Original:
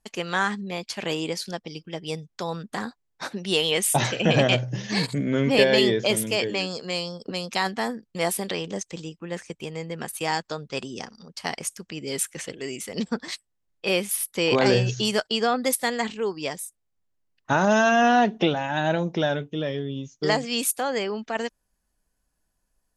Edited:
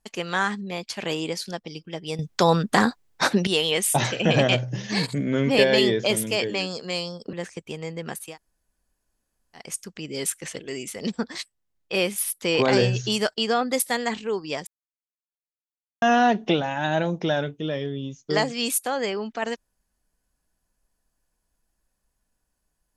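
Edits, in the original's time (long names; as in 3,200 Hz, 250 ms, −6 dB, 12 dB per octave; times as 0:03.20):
0:02.19–0:03.47: clip gain +12 dB
0:07.33–0:09.26: remove
0:10.19–0:11.58: fill with room tone, crossfade 0.24 s
0:16.60–0:17.95: silence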